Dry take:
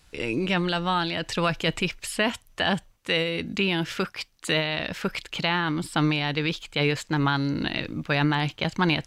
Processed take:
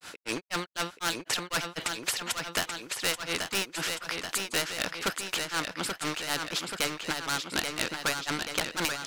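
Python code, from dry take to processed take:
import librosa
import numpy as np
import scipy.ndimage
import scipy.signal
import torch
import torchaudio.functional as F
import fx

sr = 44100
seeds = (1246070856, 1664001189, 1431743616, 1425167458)

p1 = scipy.signal.sosfilt(scipy.signal.butter(2, 280.0, 'highpass', fs=sr, output='sos'), x)
p2 = fx.peak_eq(p1, sr, hz=1400.0, db=8.0, octaves=0.37)
p3 = fx.rider(p2, sr, range_db=10, speed_s=0.5)
p4 = p2 + F.gain(torch.from_numpy(p3), -1.5).numpy()
p5 = np.clip(10.0 ** (17.0 / 20.0) * p4, -1.0, 1.0) / 10.0 ** (17.0 / 20.0)
p6 = fx.granulator(p5, sr, seeds[0], grain_ms=164.0, per_s=4.0, spray_ms=100.0, spread_st=0)
p7 = fx.echo_feedback(p6, sr, ms=832, feedback_pct=48, wet_db=-10.0)
p8 = fx.spectral_comp(p7, sr, ratio=2.0)
y = F.gain(torch.from_numpy(p8), 5.0).numpy()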